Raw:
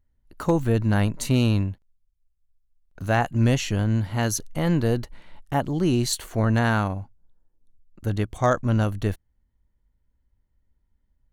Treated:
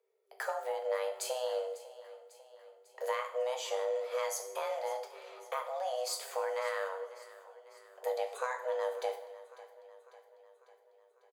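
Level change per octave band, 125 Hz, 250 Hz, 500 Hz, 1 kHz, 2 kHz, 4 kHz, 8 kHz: under -40 dB, under -40 dB, -5.5 dB, -8.5 dB, -11.5 dB, -10.0 dB, -9.5 dB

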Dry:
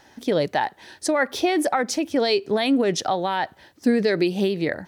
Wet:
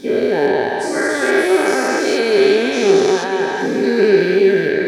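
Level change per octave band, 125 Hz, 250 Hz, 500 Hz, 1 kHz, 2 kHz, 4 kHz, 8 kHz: +3.0, +4.5, +10.5, +3.0, +10.0, +4.0, +4.5 dB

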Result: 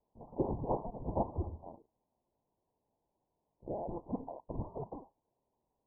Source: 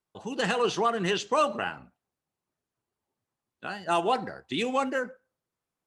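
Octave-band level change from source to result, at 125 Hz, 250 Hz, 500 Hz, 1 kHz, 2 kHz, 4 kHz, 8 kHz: -0.5 dB, -7.5 dB, -11.5 dB, -14.5 dB, under -40 dB, under -40 dB, under -35 dB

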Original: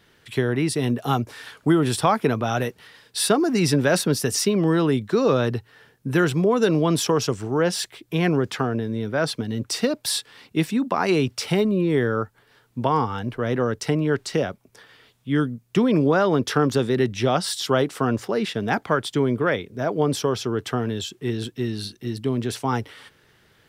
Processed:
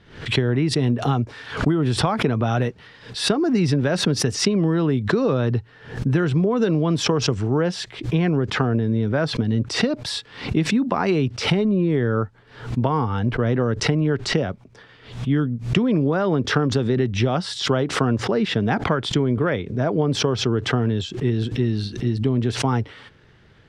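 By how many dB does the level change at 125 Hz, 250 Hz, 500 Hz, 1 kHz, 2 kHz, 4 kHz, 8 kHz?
+5.0, +1.5, -0.5, -1.5, +1.0, +2.5, -2.5 dB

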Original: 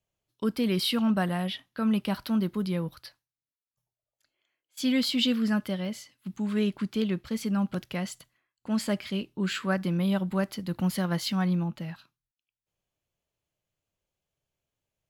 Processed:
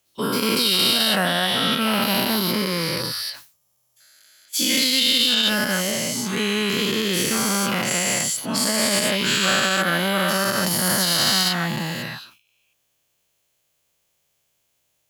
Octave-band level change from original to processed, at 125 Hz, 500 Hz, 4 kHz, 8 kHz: +2.0, +8.5, +16.0, +21.5 dB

